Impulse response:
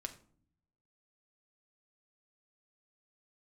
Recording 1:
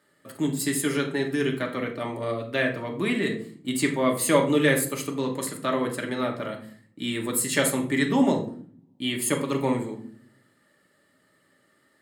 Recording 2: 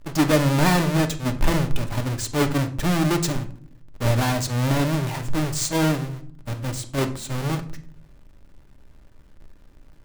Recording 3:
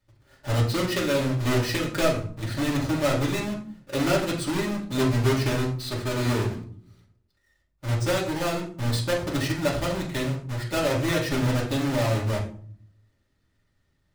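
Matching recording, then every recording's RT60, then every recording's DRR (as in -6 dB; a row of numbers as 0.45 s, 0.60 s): 2; 0.55 s, 0.55 s, 0.50 s; 0.5 dB, 5.5 dB, -4.5 dB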